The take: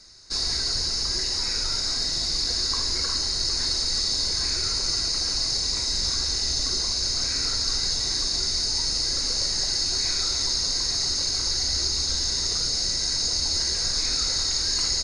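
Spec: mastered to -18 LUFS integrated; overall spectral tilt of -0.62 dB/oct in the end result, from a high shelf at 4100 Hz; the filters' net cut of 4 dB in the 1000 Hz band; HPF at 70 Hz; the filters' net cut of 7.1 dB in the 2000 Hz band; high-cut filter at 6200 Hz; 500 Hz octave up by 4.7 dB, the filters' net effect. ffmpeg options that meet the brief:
-af "highpass=70,lowpass=6.2k,equalizer=f=500:t=o:g=7.5,equalizer=f=1k:t=o:g=-5.5,equalizer=f=2k:t=o:g=-8.5,highshelf=f=4.1k:g=4.5,volume=4.5dB"

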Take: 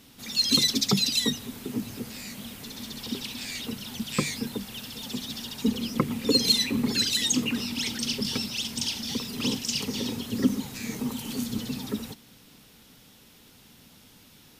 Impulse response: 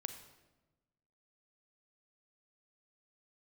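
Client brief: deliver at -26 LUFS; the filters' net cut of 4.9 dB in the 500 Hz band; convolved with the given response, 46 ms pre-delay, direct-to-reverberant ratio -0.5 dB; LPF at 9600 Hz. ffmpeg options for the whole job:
-filter_complex "[0:a]lowpass=9.6k,equalizer=f=500:t=o:g=-6,asplit=2[a][b];[1:a]atrim=start_sample=2205,adelay=46[c];[b][c]afir=irnorm=-1:irlink=0,volume=2.5dB[d];[a][d]amix=inputs=2:normalize=0,volume=-1.5dB"

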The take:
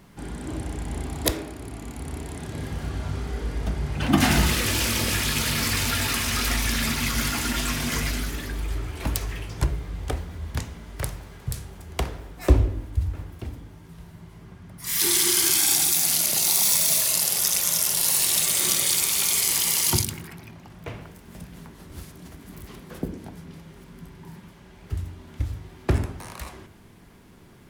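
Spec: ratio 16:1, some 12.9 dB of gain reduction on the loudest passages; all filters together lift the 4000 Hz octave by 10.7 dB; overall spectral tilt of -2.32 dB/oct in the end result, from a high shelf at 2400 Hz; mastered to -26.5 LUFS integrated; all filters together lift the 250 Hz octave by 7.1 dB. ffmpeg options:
-af "equalizer=f=250:t=o:g=8.5,highshelf=f=2.4k:g=9,equalizer=f=4k:t=o:g=5,acompressor=threshold=-21dB:ratio=16,volume=-1dB"

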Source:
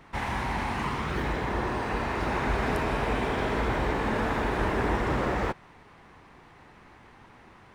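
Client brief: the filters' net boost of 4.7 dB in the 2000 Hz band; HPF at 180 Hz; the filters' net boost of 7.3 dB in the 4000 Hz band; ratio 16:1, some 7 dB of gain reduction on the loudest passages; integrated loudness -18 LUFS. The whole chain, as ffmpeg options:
-af "highpass=180,equalizer=f=2k:t=o:g=4,equalizer=f=4k:t=o:g=8,acompressor=threshold=-30dB:ratio=16,volume=15.5dB"

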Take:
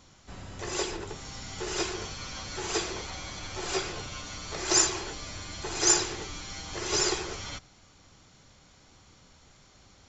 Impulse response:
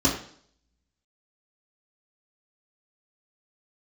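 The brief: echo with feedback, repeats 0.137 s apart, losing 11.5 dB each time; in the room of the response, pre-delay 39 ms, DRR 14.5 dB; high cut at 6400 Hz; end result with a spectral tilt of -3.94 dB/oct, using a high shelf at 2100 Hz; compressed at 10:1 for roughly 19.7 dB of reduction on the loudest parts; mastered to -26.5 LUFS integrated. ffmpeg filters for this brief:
-filter_complex "[0:a]lowpass=6.4k,highshelf=f=2.1k:g=-6.5,acompressor=threshold=-45dB:ratio=10,aecho=1:1:137|274|411:0.266|0.0718|0.0194,asplit=2[a][b];[1:a]atrim=start_sample=2205,adelay=39[c];[b][c]afir=irnorm=-1:irlink=0,volume=-28.5dB[d];[a][d]amix=inputs=2:normalize=0,volume=22dB"

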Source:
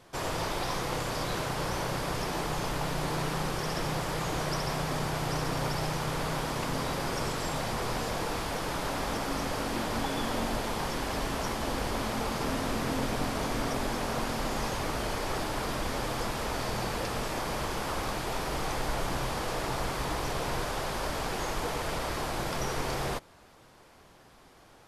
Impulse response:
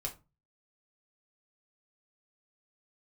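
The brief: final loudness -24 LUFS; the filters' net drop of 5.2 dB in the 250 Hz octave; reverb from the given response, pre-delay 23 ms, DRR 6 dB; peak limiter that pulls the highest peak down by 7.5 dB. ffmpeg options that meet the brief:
-filter_complex "[0:a]equalizer=f=250:t=o:g=-7.5,alimiter=level_in=2.5dB:limit=-24dB:level=0:latency=1,volume=-2.5dB,asplit=2[a][b];[1:a]atrim=start_sample=2205,adelay=23[c];[b][c]afir=irnorm=-1:irlink=0,volume=-6dB[d];[a][d]amix=inputs=2:normalize=0,volume=10.5dB"

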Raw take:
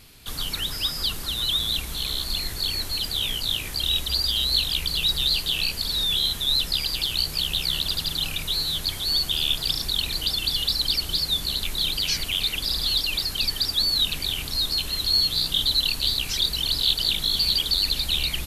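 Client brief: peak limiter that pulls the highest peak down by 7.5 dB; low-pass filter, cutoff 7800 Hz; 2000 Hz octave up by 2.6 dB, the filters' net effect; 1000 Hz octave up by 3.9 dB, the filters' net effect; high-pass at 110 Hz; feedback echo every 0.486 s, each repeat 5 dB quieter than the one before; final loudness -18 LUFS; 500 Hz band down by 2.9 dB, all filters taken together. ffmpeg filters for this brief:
-af "highpass=110,lowpass=7.8k,equalizer=f=500:t=o:g=-5.5,equalizer=f=1k:t=o:g=5.5,equalizer=f=2k:t=o:g=3,alimiter=limit=-15.5dB:level=0:latency=1,aecho=1:1:486|972|1458|1944|2430|2916|3402:0.562|0.315|0.176|0.0988|0.0553|0.031|0.0173,volume=4dB"

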